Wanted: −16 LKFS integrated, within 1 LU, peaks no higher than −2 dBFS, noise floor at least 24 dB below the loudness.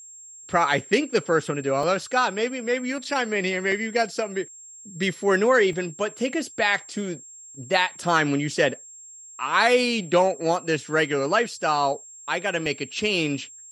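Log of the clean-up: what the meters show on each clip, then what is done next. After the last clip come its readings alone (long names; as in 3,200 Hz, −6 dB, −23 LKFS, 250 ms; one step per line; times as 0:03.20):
number of dropouts 4; longest dropout 2.4 ms; interfering tone 7,500 Hz; level of the tone −42 dBFS; integrated loudness −23.5 LKFS; sample peak −5.5 dBFS; target loudness −16.0 LKFS
→ repair the gap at 0:01.83/0:03.72/0:05.73/0:12.66, 2.4 ms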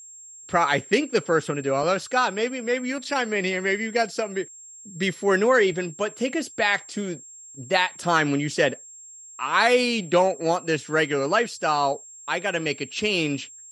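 number of dropouts 0; interfering tone 7,500 Hz; level of the tone −42 dBFS
→ notch filter 7,500 Hz, Q 30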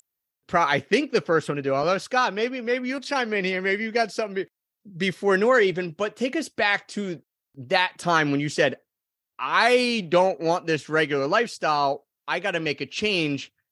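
interfering tone none found; integrated loudness −23.5 LKFS; sample peak −6.0 dBFS; target loudness −16.0 LKFS
→ level +7.5 dB
brickwall limiter −2 dBFS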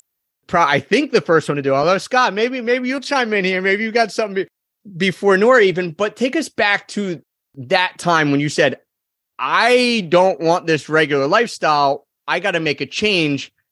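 integrated loudness −16.5 LKFS; sample peak −2.0 dBFS; background noise floor −79 dBFS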